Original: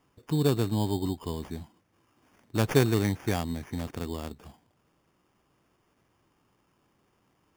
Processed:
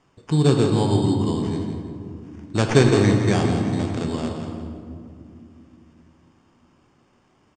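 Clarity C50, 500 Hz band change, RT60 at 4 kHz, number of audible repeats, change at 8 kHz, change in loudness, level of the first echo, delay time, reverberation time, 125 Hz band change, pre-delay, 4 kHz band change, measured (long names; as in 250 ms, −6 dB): 3.0 dB, +9.0 dB, 1.1 s, 2, +6.5 dB, +8.5 dB, −9.0 dB, 168 ms, 2.4 s, +9.0 dB, 5 ms, +7.5 dB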